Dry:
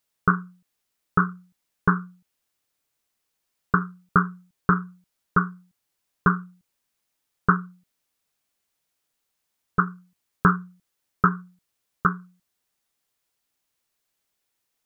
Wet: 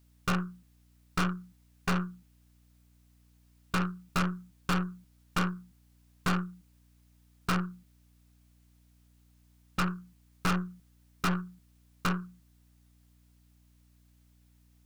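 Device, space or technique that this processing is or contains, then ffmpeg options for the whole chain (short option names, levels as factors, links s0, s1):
valve amplifier with mains hum: -af "aeval=exprs='(tanh(39.8*val(0)+0.5)-tanh(0.5))/39.8':c=same,aeval=exprs='val(0)+0.000398*(sin(2*PI*60*n/s)+sin(2*PI*2*60*n/s)/2+sin(2*PI*3*60*n/s)/3+sin(2*PI*4*60*n/s)/4+sin(2*PI*5*60*n/s)/5)':c=same,volume=2.11"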